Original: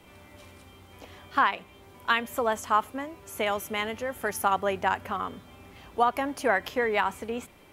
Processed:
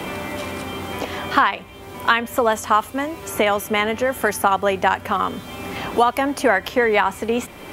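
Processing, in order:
multiband upward and downward compressor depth 70%
level +8.5 dB

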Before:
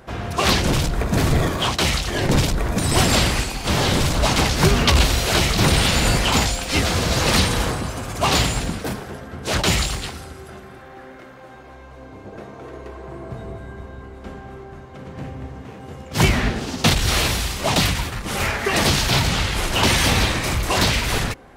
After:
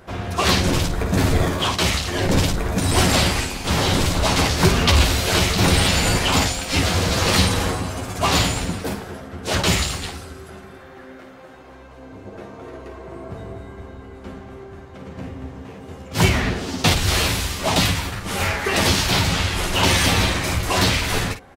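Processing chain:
ambience of single reflections 11 ms −5 dB, 54 ms −9.5 dB
level −1.5 dB

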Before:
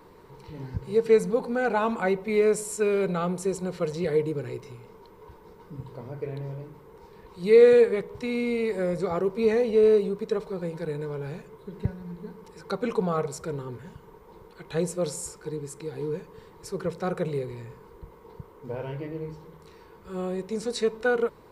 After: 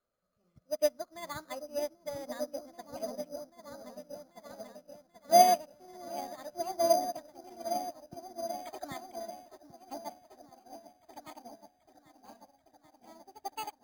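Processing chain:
gliding playback speed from 132% → 179%
in parallel at −5.5 dB: soft clipping −18 dBFS, distortion −11 dB
on the sum: low-shelf EQ 310 Hz −8.5 dB
on a send: echo whose low-pass opens from repeat to repeat 786 ms, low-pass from 400 Hz, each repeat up 1 octave, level 0 dB
on the sum: bad sample-rate conversion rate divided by 8×, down filtered, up hold
low-shelf EQ 120 Hz +8 dB
expander for the loud parts 2.5 to 1, over −33 dBFS
level −4 dB

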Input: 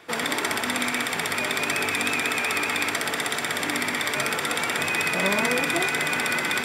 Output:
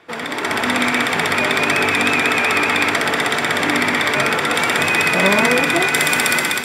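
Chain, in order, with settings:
high-shelf EQ 5,400 Hz −11.5 dB, from 0:04.54 −5.5 dB, from 0:05.94 +6 dB
automatic gain control gain up to 10 dB
level +1 dB

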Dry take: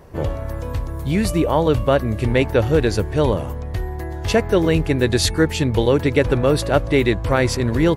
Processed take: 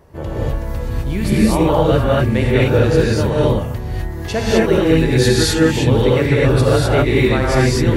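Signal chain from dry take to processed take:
reverb whose tail is shaped and stops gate 280 ms rising, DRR −7 dB
level −4.5 dB

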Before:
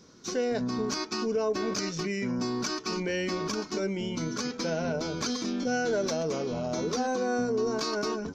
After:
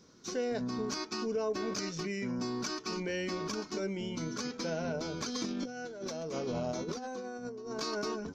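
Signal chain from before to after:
0:05.24–0:07.80: compressor whose output falls as the input rises −32 dBFS, ratio −0.5
level −5 dB

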